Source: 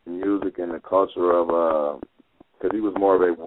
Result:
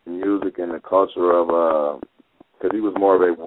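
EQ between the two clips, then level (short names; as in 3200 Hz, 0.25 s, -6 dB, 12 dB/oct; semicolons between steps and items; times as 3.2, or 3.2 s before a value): low shelf 100 Hz -8 dB; +3.0 dB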